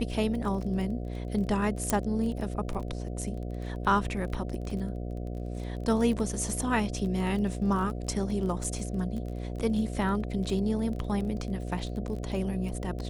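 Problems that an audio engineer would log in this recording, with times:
buzz 60 Hz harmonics 12 -35 dBFS
crackle 23 per s -35 dBFS
1.90 s: pop -11 dBFS
4.70 s: dropout 3.3 ms
8.64 s: dropout 3.7 ms

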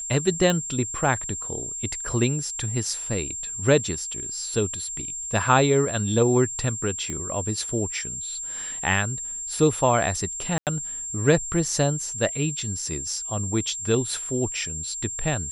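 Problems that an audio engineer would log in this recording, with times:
whine 7.4 kHz -30 dBFS
0.50 s: pop -10 dBFS
7.10 s: pop -18 dBFS
10.58–10.67 s: dropout 88 ms

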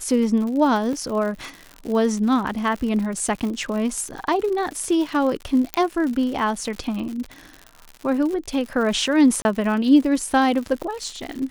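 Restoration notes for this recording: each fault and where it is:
crackle 120 per s -29 dBFS
0.93 s: dropout 2.3 ms
5.74 s: pop -6 dBFS
9.42–9.45 s: dropout 30 ms

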